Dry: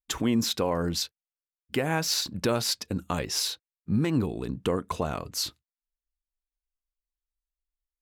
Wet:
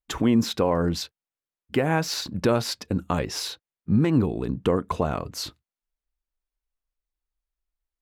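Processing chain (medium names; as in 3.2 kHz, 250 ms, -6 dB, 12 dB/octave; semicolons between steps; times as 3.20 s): treble shelf 3 kHz -10.5 dB; trim +5 dB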